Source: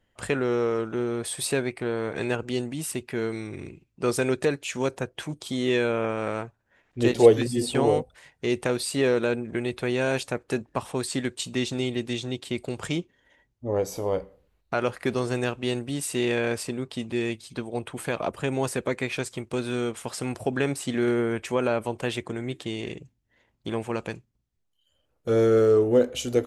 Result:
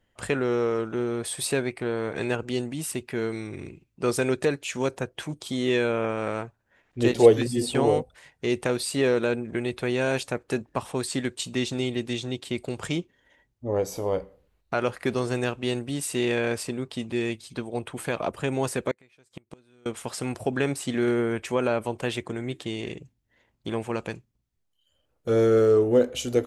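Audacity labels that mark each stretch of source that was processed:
18.910000	19.860000	flipped gate shuts at -23 dBFS, range -30 dB

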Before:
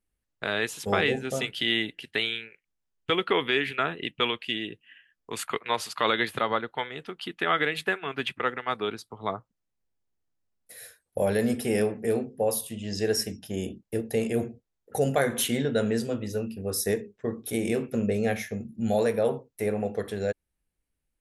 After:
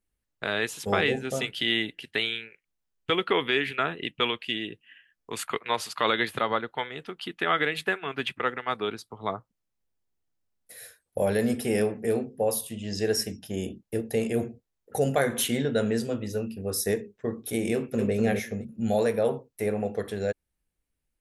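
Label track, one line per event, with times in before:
17.730000	18.140000	echo throw 0.25 s, feedback 15%, level -4 dB

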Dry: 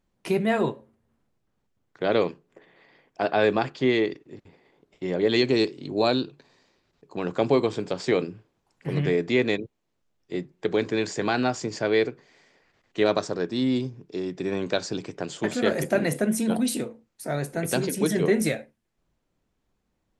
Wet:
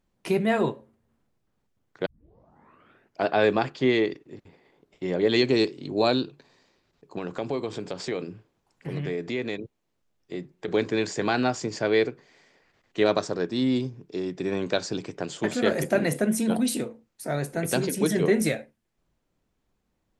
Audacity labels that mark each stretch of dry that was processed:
2.060000	2.060000	tape start 1.19 s
7.180000	10.680000	compressor 2:1, threshold -31 dBFS

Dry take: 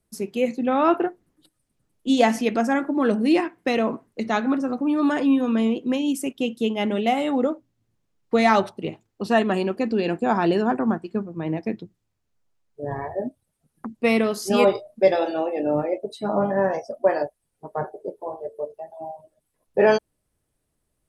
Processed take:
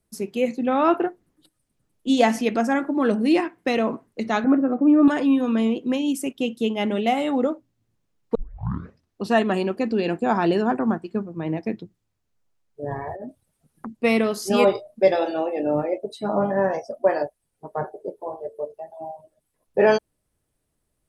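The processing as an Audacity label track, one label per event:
4.440000	5.080000	speaker cabinet 180–2200 Hz, peaks and dips at 190 Hz +9 dB, 300 Hz +6 dB, 440 Hz +4 dB, 660 Hz +7 dB, 940 Hz -6 dB
8.350000	8.350000	tape start 0.88 s
12.980000	13.870000	negative-ratio compressor -33 dBFS

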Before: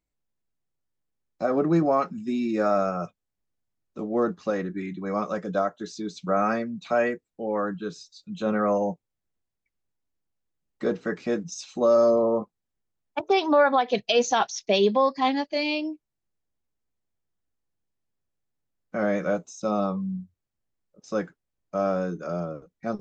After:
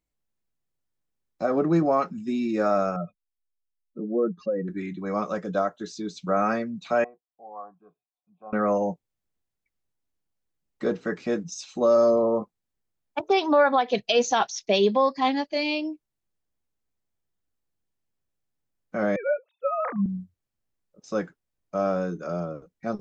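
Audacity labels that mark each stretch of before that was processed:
2.960000	4.680000	spectral contrast raised exponent 2.1
7.040000	8.530000	vocal tract filter a
19.160000	20.060000	sine-wave speech

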